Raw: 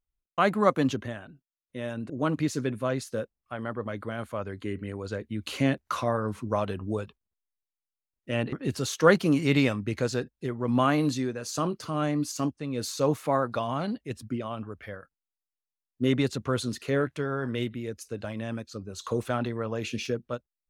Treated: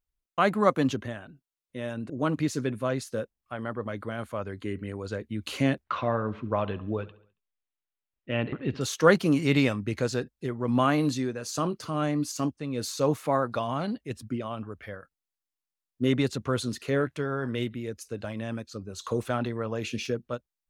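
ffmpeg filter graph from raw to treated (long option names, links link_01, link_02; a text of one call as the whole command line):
ffmpeg -i in.wav -filter_complex "[0:a]asettb=1/sr,asplit=3[link_01][link_02][link_03];[link_01]atrim=end=5.844[link_04];[link_02]atrim=start=5.84:end=8.81,asetpts=PTS-STARTPTS,afade=type=in:duration=0.004:curve=qsin,afade=type=out:start_time=2.966:duration=0.004:curve=qsin,lowpass=frequency=3200:width=0.5412,lowpass=frequency=3200:width=1.3066,aemphasis=mode=production:type=cd,aecho=1:1:69|138|207|276:0.112|0.0583|0.0303|0.0158,atrim=end_sample=130977[link_05];[link_03]atrim=start=8.806[link_06];[link_04][link_05]acrossfade=duration=0.004:curve1=hsin:curve2=qsin[link_07];[link_07][link_06]acrossfade=duration=0.004:curve1=qsin:curve2=hsin" out.wav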